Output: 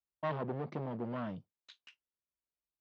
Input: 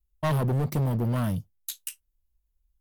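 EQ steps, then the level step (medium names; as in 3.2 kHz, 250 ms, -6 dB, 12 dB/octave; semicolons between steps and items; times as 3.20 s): Gaussian low-pass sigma 2.6 samples; high-pass 250 Hz 12 dB/octave; -6.5 dB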